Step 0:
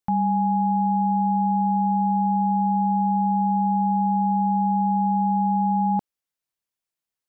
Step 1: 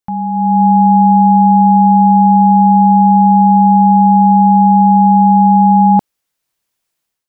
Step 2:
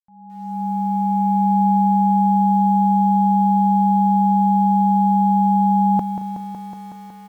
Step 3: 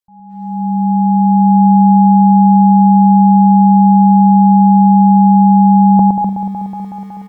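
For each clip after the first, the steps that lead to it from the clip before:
AGC gain up to 13.5 dB; gain +1.5 dB
opening faded in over 1.66 s; feedback echo 0.221 s, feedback 29%, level -19 dB; lo-fi delay 0.185 s, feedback 80%, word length 7-bit, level -10 dB; gain -6 dB
formant sharpening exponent 1.5; on a send: loudspeakers at several distances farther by 39 m -4 dB, 86 m -6 dB; on the sum: gain +6.5 dB

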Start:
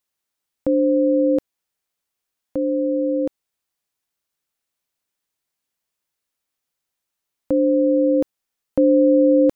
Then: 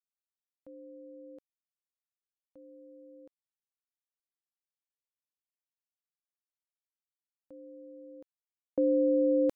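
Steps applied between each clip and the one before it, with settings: gate with hold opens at -9 dBFS; low shelf 330 Hz -8 dB; gain -8 dB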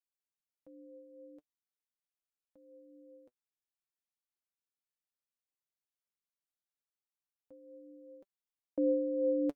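flange 0.46 Hz, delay 2.8 ms, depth 5.5 ms, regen +40%; gain -1.5 dB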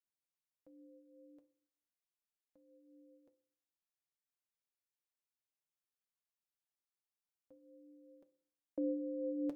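reverb RT60 0.55 s, pre-delay 3 ms, DRR 12 dB; gain -5 dB

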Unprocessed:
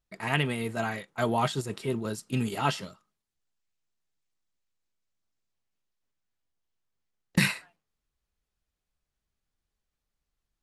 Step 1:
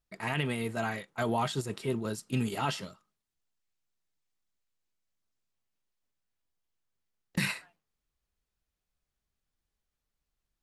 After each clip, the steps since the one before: limiter -17 dBFS, peak gain reduction 8 dB; gain -1.5 dB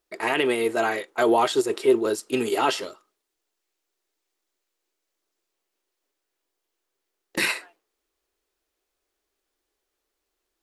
resonant low shelf 240 Hz -13.5 dB, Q 3; gain +8.5 dB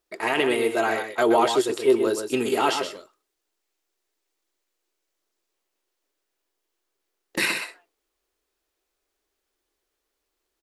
echo 0.126 s -7.5 dB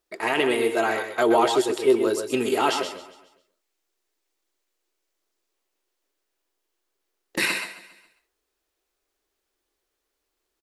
feedback echo 0.137 s, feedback 47%, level -16 dB

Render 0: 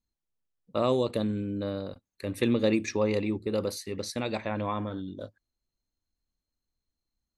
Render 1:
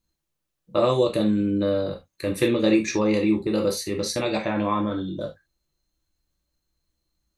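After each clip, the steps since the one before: in parallel at +1.5 dB: compressor, threshold -32 dBFS, peak gain reduction 12 dB; on the sum: non-linear reverb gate 0.1 s falling, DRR 1 dB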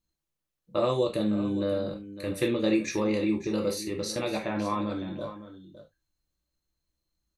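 echo 0.558 s -13.5 dB; gain -5.5 dB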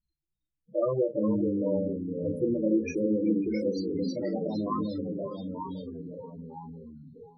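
loudest bins only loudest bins 8; echoes that change speed 0.311 s, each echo -2 st, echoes 2, each echo -6 dB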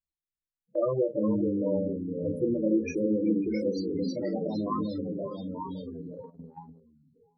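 gate -41 dBFS, range -15 dB

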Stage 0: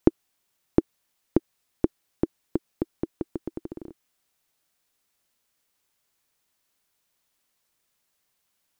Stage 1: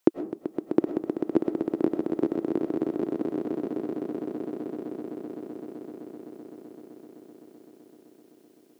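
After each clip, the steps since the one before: HPF 240 Hz 12 dB/oct; swelling echo 0.128 s, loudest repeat 8, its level -9 dB; on a send at -10 dB: reverb RT60 0.40 s, pre-delay 70 ms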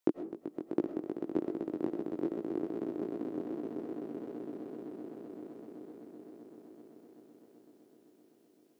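chorus 2.5 Hz, delay 17 ms, depth 5.7 ms; gain -5.5 dB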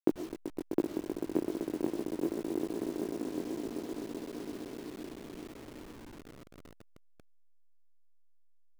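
level-crossing sampler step -44.5 dBFS; gain +1.5 dB

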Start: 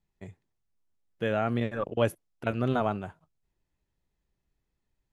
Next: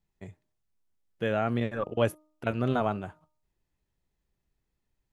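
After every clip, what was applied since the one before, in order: de-hum 307.5 Hz, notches 4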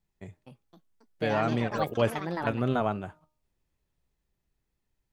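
echoes that change speed 0.305 s, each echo +5 st, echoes 3, each echo -6 dB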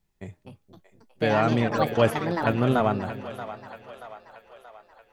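split-band echo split 510 Hz, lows 0.235 s, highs 0.63 s, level -12 dB; gain +5 dB

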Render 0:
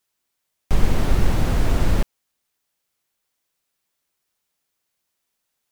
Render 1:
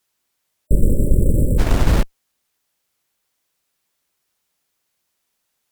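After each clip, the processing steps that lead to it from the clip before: added harmonics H 8 -25 dB, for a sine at -3 dBFS; spectral delete 0.67–1.59, 620–7400 Hz; gain +4 dB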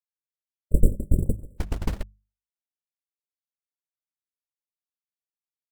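gate -9 dBFS, range -36 dB; notches 50/100/150/200 Hz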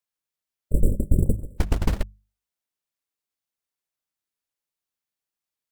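limiter -13 dBFS, peak gain reduction 9 dB; gain +6 dB

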